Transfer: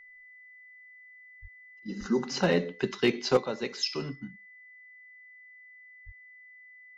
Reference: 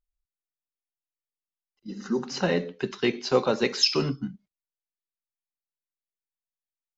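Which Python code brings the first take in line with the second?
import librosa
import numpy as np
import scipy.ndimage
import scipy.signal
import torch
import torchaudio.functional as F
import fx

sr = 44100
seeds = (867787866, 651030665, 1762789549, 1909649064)

y = fx.fix_declip(x, sr, threshold_db=-14.5)
y = fx.notch(y, sr, hz=2000.0, q=30.0)
y = fx.fix_deplosive(y, sr, at_s=(1.41, 1.99, 6.05))
y = fx.gain(y, sr, db=fx.steps((0.0, 0.0), (3.37, 9.0)))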